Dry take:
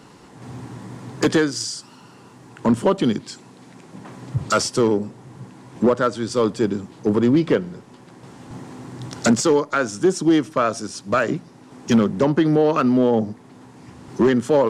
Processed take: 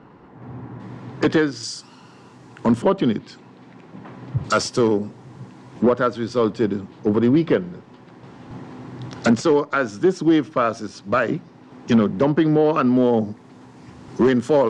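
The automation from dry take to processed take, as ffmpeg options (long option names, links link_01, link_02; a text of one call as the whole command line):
ffmpeg -i in.wav -af "asetnsamples=nb_out_samples=441:pad=0,asendcmd='0.8 lowpass f 3500;1.63 lowpass f 6800;2.82 lowpass f 3300;4.44 lowpass f 6300;5.81 lowpass f 4000;12.97 lowpass f 7000',lowpass=1700" out.wav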